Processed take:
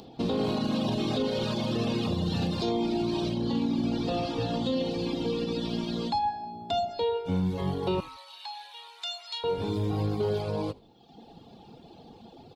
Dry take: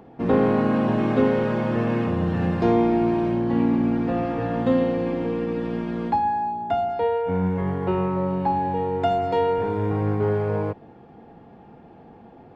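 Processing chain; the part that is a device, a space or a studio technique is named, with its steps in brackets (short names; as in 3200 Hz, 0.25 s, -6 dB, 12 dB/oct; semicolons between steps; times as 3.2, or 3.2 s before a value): reverb removal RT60 1.1 s; over-bright horn tweeter (resonant high shelf 2700 Hz +13.5 dB, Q 3; limiter -20 dBFS, peak gain reduction 11 dB); 8–9.44 HPF 1200 Hz 24 dB/oct; frequency-shifting echo 80 ms, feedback 37%, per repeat -52 Hz, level -23 dB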